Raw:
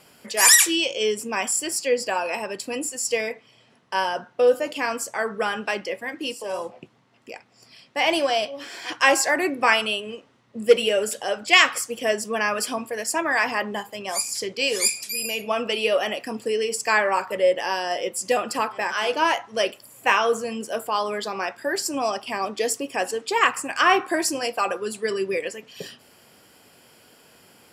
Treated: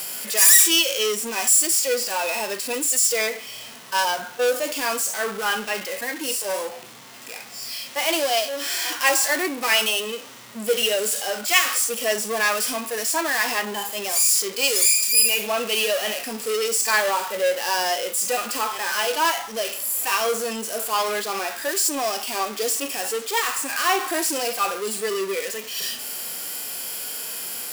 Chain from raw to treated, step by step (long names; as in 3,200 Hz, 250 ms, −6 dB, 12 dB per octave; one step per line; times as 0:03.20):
power curve on the samples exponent 0.5
harmonic and percussive parts rebalanced percussive −16 dB
RIAA equalisation recording
level −7 dB